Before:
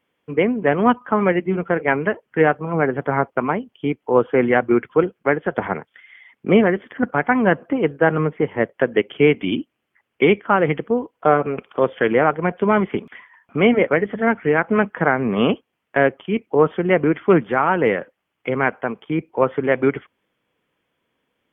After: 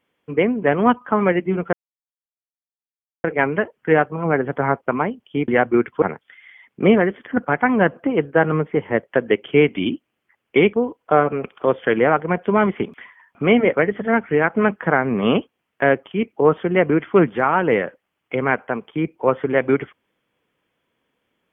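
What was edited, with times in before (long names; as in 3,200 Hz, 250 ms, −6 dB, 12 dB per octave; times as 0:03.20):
0:01.73: splice in silence 1.51 s
0:03.97–0:04.45: remove
0:04.99–0:05.68: remove
0:10.39–0:10.87: remove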